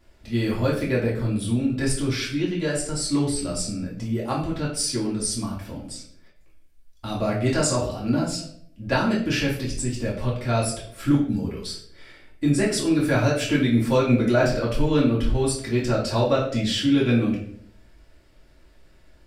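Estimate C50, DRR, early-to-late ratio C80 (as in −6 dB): 5.5 dB, −6.5 dB, 9.5 dB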